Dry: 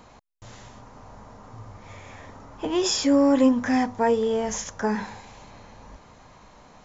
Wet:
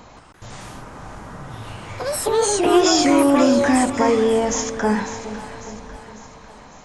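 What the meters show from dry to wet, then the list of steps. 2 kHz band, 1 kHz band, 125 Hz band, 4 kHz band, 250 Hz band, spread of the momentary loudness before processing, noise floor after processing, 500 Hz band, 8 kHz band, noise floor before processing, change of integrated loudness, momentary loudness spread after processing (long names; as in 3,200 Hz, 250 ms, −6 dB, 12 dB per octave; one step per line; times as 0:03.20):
+8.0 dB, +8.0 dB, +7.5 dB, +6.5 dB, +4.5 dB, 12 LU, −45 dBFS, +7.0 dB, can't be measured, −52 dBFS, +5.0 dB, 22 LU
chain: brickwall limiter −16.5 dBFS, peak gain reduction 7.5 dB
delay with pitch and tempo change per echo 171 ms, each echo +4 semitones, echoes 2
echo with a time of its own for lows and highs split 770 Hz, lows 414 ms, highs 549 ms, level −13 dB
level +6.5 dB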